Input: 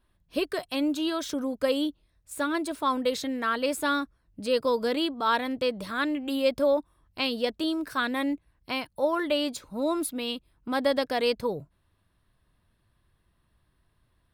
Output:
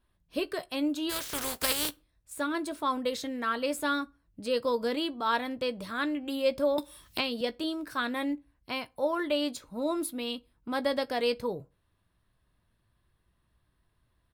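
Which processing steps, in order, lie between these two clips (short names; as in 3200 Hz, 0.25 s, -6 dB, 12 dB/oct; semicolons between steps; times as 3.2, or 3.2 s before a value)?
1.09–1.89 spectral contrast lowered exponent 0.29; doubler 17 ms -13 dB; on a send at -23.5 dB: reverb RT60 0.35 s, pre-delay 22 ms; 6.78–7.41 on the sum: three-band squash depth 100%; gain -3.5 dB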